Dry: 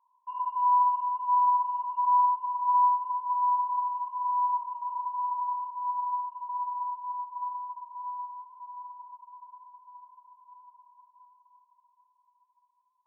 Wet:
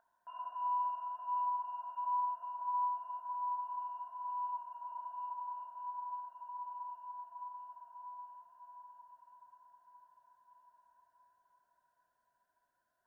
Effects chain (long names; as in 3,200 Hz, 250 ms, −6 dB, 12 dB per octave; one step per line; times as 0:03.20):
drawn EQ curve 490 Hz 0 dB, 700 Hz +15 dB, 1,000 Hz −28 dB, 1,500 Hz +14 dB, 2,200 Hz −12 dB
level +14.5 dB